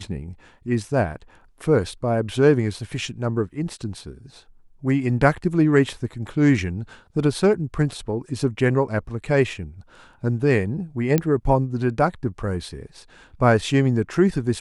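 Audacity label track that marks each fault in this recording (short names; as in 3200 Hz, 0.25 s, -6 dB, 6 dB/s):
11.180000	11.180000	pop -7 dBFS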